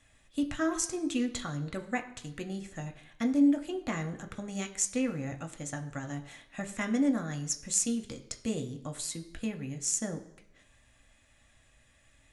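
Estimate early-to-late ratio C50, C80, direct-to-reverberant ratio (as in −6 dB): 13.0 dB, 15.5 dB, 4.5 dB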